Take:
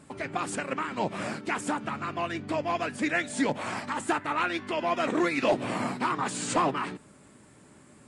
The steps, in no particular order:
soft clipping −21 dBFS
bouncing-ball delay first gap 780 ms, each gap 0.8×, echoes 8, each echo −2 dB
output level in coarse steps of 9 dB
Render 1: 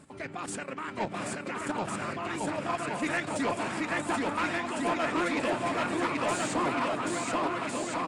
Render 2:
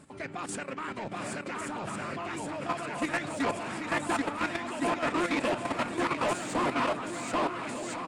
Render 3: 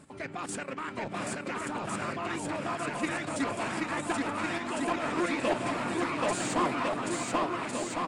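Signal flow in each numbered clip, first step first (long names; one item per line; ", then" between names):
output level in coarse steps, then bouncing-ball delay, then soft clipping
bouncing-ball delay, then soft clipping, then output level in coarse steps
soft clipping, then output level in coarse steps, then bouncing-ball delay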